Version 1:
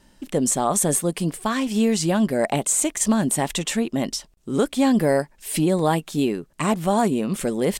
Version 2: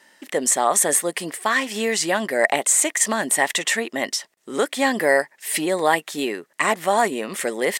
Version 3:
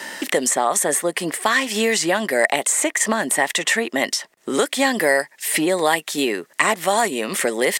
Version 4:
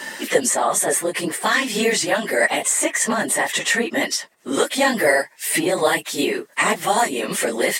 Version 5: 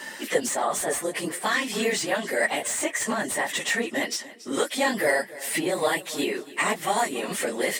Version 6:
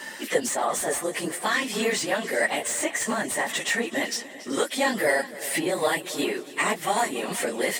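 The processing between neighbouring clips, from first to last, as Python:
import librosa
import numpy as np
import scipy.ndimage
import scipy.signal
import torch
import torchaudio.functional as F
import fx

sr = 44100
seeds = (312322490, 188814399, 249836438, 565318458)

y1 = scipy.signal.sosfilt(scipy.signal.butter(2, 470.0, 'highpass', fs=sr, output='sos'), x)
y1 = fx.peak_eq(y1, sr, hz=1900.0, db=11.5, octaves=0.33)
y1 = y1 * 10.0 ** (3.5 / 20.0)
y2 = fx.band_squash(y1, sr, depth_pct=70)
y2 = y2 * 10.0 ** (1.0 / 20.0)
y3 = fx.phase_scramble(y2, sr, seeds[0], window_ms=50)
y4 = fx.echo_feedback(y3, sr, ms=281, feedback_pct=30, wet_db=-18)
y4 = fx.slew_limit(y4, sr, full_power_hz=760.0)
y4 = y4 * 10.0 ** (-6.0 / 20.0)
y5 = fx.echo_feedback(y4, sr, ms=379, feedback_pct=36, wet_db=-17.0)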